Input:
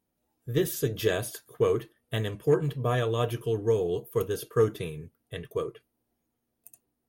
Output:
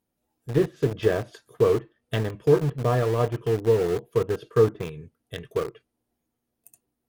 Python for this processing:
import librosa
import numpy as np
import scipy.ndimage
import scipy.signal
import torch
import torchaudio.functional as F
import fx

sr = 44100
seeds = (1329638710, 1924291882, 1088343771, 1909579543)

p1 = fx.env_lowpass_down(x, sr, base_hz=1400.0, full_db=-24.5)
p2 = np.where(np.abs(p1) >= 10.0 ** (-28.5 / 20.0), p1, 0.0)
y = p1 + (p2 * librosa.db_to_amplitude(-3.0))